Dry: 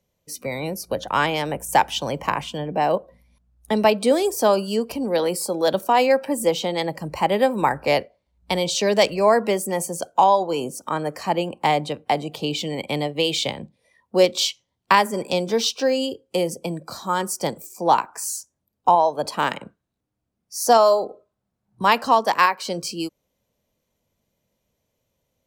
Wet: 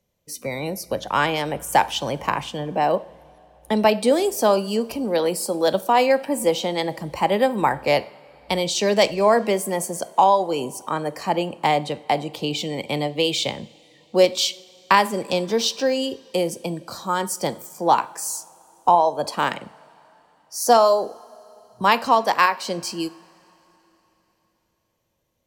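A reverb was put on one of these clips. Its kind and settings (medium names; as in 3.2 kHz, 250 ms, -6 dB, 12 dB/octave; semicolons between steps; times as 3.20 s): two-slope reverb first 0.46 s, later 3.7 s, from -18 dB, DRR 14.5 dB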